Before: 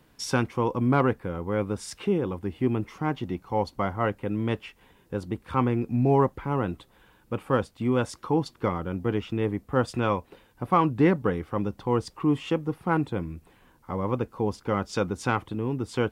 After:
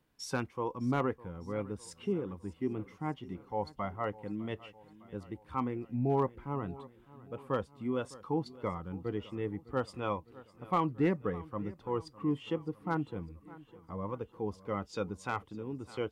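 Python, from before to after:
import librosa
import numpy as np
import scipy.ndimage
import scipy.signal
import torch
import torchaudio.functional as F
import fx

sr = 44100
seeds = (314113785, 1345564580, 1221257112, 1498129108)

y = fx.noise_reduce_blind(x, sr, reduce_db=7)
y = fx.echo_feedback(y, sr, ms=606, feedback_pct=57, wet_db=-19.5)
y = np.clip(y, -10.0 ** (-12.5 / 20.0), 10.0 ** (-12.5 / 20.0))
y = F.gain(torch.from_numpy(y), -8.0).numpy()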